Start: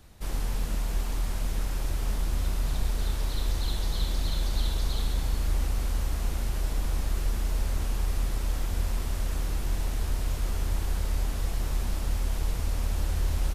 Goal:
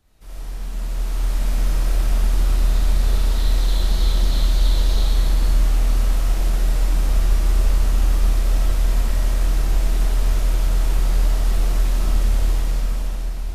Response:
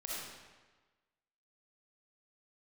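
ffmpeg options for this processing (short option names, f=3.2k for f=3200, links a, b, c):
-filter_complex "[0:a]dynaudnorm=f=190:g=11:m=11.5dB[a];[1:a]atrim=start_sample=2205[b];[a][b]afir=irnorm=-1:irlink=0,volume=-5dB"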